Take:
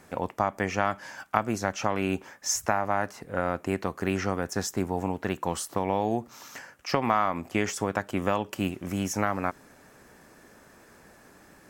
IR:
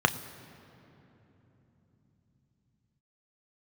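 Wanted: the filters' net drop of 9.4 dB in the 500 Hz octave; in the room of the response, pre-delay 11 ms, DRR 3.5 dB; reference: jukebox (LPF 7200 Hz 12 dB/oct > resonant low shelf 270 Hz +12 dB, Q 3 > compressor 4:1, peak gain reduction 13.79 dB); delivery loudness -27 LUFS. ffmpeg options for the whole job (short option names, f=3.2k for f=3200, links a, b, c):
-filter_complex "[0:a]equalizer=f=500:t=o:g=-7,asplit=2[a][b];[1:a]atrim=start_sample=2205,adelay=11[c];[b][c]afir=irnorm=-1:irlink=0,volume=-17.5dB[d];[a][d]amix=inputs=2:normalize=0,lowpass=7.2k,lowshelf=f=270:t=q:w=3:g=12,acompressor=threshold=-24dB:ratio=4,volume=0.5dB"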